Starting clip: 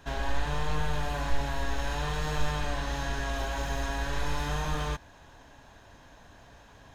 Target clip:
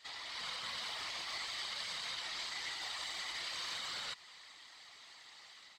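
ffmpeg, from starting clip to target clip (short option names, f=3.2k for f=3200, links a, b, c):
-af "bandpass=f=3.4k:t=q:w=1.7:csg=0,alimiter=level_in=17dB:limit=-24dB:level=0:latency=1:release=111,volume=-17dB,dynaudnorm=f=270:g=3:m=5dB,asetrate=52920,aresample=44100,afftfilt=real='hypot(re,im)*cos(2*PI*random(0))':imag='hypot(re,im)*sin(2*PI*random(1))':win_size=512:overlap=0.75,volume=9.5dB"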